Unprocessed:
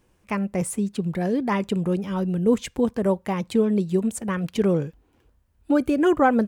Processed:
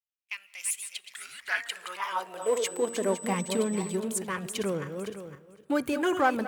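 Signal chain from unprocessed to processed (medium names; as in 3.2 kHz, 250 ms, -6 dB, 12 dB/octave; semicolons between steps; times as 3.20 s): backward echo that repeats 255 ms, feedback 46%, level -8.5 dB; expander -35 dBFS; in parallel at -8 dB: saturation -25 dBFS, distortion -7 dB; on the sum: high-pass sweep 2.8 kHz -> 82 Hz, 1.31–3.93 s; 1.10–1.69 s: frequency shift -310 Hz; tilt EQ +4 dB/octave; de-hum 234.2 Hz, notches 8; on a send at -22.5 dB: reverberation RT60 2.1 s, pre-delay 115 ms; 2.41–3.95 s: on the sum: whistle 8 kHz -30 dBFS; level rider gain up to 6 dB; treble shelf 3.8 kHz -8 dB; trim -8.5 dB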